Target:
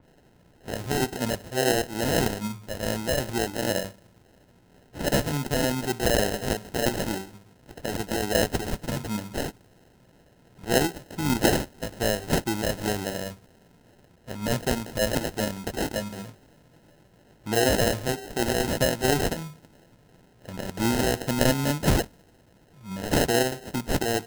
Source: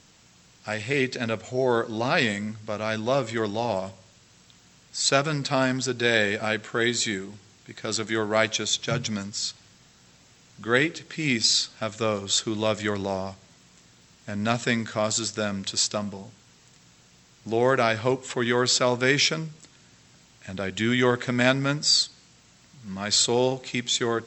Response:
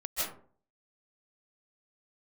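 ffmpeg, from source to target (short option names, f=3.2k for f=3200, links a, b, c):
-filter_complex "[0:a]bandreject=f=200.2:t=h:w=4,bandreject=f=400.4:t=h:w=4,acrossover=split=990[a][b];[a]aeval=exprs='val(0)*(1-0.5/2+0.5/2*cos(2*PI*2.4*n/s))':c=same[c];[b]aeval=exprs='val(0)*(1-0.5/2-0.5/2*cos(2*PI*2.4*n/s))':c=same[d];[c][d]amix=inputs=2:normalize=0,acrusher=samples=38:mix=1:aa=0.000001,asettb=1/sr,asplit=3[e][f][g];[e]atrim=end=15.794[h];[f]atrim=start=15.79:end=17.79,asetpts=PTS-STARTPTS,afade=t=in:d=0.004:c=qsin,afade=t=out:st=1.996:d=0.004:c=qsin,asplit=2[i][j];[j]adelay=19,volume=-5dB[k];[i][k]amix=inputs=2:normalize=0,atrim=end_sample=88200[l];[g]atrim=start=17.786[m];[h][l]acrossfade=d=0.004:c1=hsin:c2=qsin[n];[n][m]acrossfade=d=0.004:c1=qsin:c2=hsin,adynamicequalizer=threshold=0.00562:dfrequency=4000:dqfactor=0.7:tfrequency=4000:tqfactor=0.7:attack=5:release=100:ratio=0.375:range=2.5:mode=boostabove:tftype=highshelf,volume=1dB"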